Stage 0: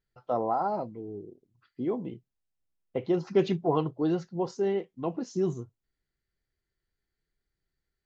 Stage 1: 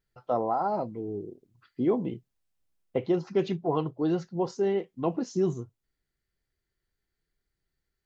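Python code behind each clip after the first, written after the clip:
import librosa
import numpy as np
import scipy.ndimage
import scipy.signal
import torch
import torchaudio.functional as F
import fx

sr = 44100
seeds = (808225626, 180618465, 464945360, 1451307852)

y = fx.rider(x, sr, range_db=4, speed_s=0.5)
y = F.gain(torch.from_numpy(y), 1.0).numpy()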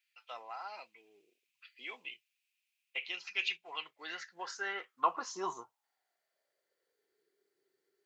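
y = fx.filter_sweep_highpass(x, sr, from_hz=2500.0, to_hz=400.0, start_s=3.62, end_s=7.25, q=6.9)
y = F.gain(torch.from_numpy(y), 1.0).numpy()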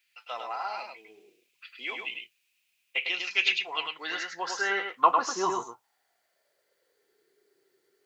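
y = x + 10.0 ** (-4.5 / 20.0) * np.pad(x, (int(102 * sr / 1000.0), 0))[:len(x)]
y = F.gain(torch.from_numpy(y), 9.0).numpy()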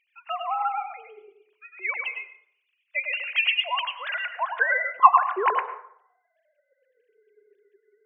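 y = fx.sine_speech(x, sr)
y = fx.rev_plate(y, sr, seeds[0], rt60_s=0.63, hf_ratio=0.5, predelay_ms=85, drr_db=12.0)
y = F.gain(torch.from_numpy(y), 5.0).numpy()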